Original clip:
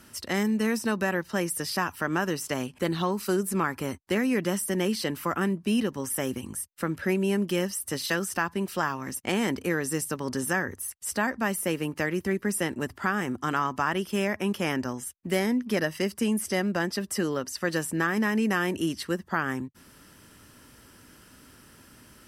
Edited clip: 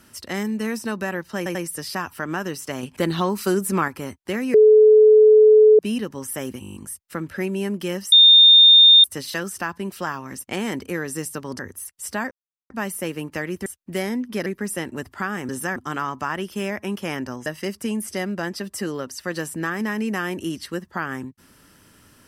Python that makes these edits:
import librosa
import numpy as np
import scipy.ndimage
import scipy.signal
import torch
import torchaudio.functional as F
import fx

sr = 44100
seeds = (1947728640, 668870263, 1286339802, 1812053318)

y = fx.edit(x, sr, fx.stutter(start_s=1.37, slice_s=0.09, count=3),
    fx.clip_gain(start_s=2.65, length_s=1.05, db=5.0),
    fx.bleep(start_s=4.36, length_s=1.25, hz=430.0, db=-8.0),
    fx.stutter(start_s=6.43, slice_s=0.02, count=8),
    fx.insert_tone(at_s=7.8, length_s=0.92, hz=3640.0, db=-7.0),
    fx.move(start_s=10.35, length_s=0.27, to_s=13.33),
    fx.insert_silence(at_s=11.34, length_s=0.39),
    fx.move(start_s=15.03, length_s=0.8, to_s=12.3), tone=tone)